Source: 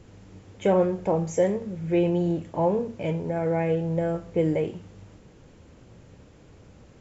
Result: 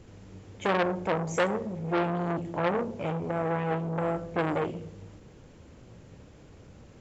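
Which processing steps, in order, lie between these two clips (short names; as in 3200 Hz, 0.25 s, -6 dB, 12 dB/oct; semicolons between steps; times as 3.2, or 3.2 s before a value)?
on a send at -13.5 dB: reverb RT60 0.90 s, pre-delay 20 ms; on the sum: core saturation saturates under 1600 Hz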